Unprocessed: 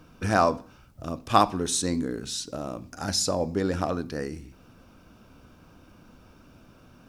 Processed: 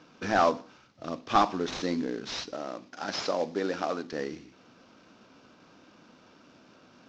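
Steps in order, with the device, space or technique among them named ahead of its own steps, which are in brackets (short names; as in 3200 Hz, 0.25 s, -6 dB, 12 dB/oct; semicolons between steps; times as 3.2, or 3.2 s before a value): early wireless headset (HPF 230 Hz 12 dB/oct; CVSD 32 kbps); 2.53–4.13 HPF 280 Hz 6 dB/oct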